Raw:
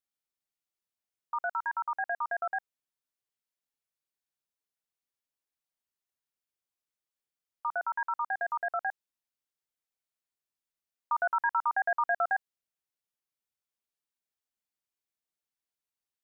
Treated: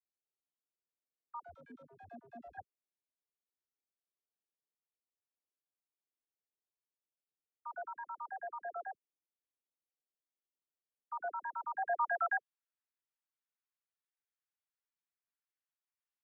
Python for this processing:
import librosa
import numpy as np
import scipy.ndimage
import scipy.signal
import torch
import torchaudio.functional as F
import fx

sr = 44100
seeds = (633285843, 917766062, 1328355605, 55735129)

y = fx.median_filter(x, sr, points=41, at=(1.4, 2.57))
y = fx.dispersion(y, sr, late='lows', ms=53.0, hz=520.0)
y = fx.filter_sweep_bandpass(y, sr, from_hz=390.0, to_hz=1500.0, start_s=11.65, end_s=12.31, q=1.2)
y = y * librosa.db_to_amplitude(-2.5)